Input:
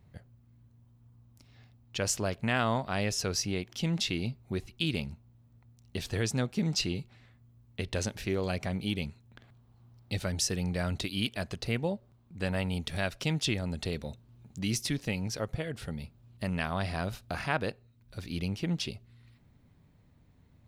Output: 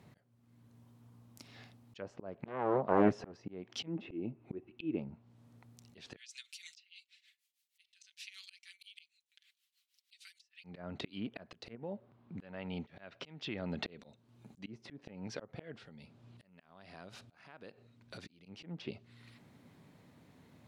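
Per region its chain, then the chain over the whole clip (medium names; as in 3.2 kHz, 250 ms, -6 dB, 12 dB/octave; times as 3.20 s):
2.46–3.34 s: treble shelf 9 kHz +3.5 dB + loudspeaker Doppler distortion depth 0.96 ms
3.87–4.99 s: resonant high shelf 3.8 kHz -7.5 dB, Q 1.5 + small resonant body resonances 320/2600 Hz, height 12 dB, ringing for 40 ms
6.16–10.64 s: inverse Chebyshev high-pass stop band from 730 Hz, stop band 60 dB + comb 5.2 ms, depth 72% + tremolo triangle 6.4 Hz, depth 90%
11.75–13.99 s: low-pass 2.7 kHz + compression 3:1, threshold -34 dBFS
15.76–18.46 s: distance through air 63 m + compression 12:1, threshold -47 dBFS
whole clip: high-pass 200 Hz 12 dB/octave; low-pass that closes with the level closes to 940 Hz, closed at -29 dBFS; slow attack 650 ms; trim +7.5 dB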